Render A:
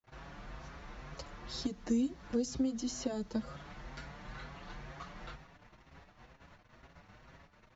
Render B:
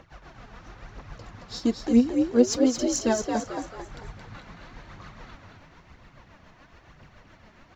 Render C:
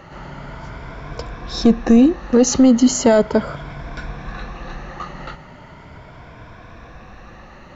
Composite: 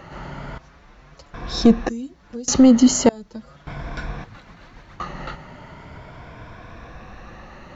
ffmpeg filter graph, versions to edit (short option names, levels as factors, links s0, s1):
-filter_complex "[0:a]asplit=3[s0][s1][s2];[2:a]asplit=5[s3][s4][s5][s6][s7];[s3]atrim=end=0.582[s8];[s0]atrim=start=0.578:end=1.342[s9];[s4]atrim=start=1.338:end=1.892[s10];[s1]atrim=start=1.888:end=2.482[s11];[s5]atrim=start=2.478:end=3.092[s12];[s2]atrim=start=3.088:end=3.672[s13];[s6]atrim=start=3.668:end=4.242[s14];[1:a]atrim=start=4.238:end=5.002[s15];[s7]atrim=start=4.998[s16];[s8][s9]acrossfade=d=0.004:c1=hsin:c2=hsin[s17];[s17][s10]acrossfade=d=0.004:c1=hsin:c2=hsin[s18];[s18][s11]acrossfade=d=0.004:c1=hsin:c2=hsin[s19];[s19][s12]acrossfade=d=0.004:c1=hsin:c2=hsin[s20];[s20][s13]acrossfade=d=0.004:c1=hsin:c2=hsin[s21];[s21][s14]acrossfade=d=0.004:c1=hsin:c2=hsin[s22];[s22][s15]acrossfade=d=0.004:c1=hsin:c2=hsin[s23];[s23][s16]acrossfade=d=0.004:c1=hsin:c2=hsin"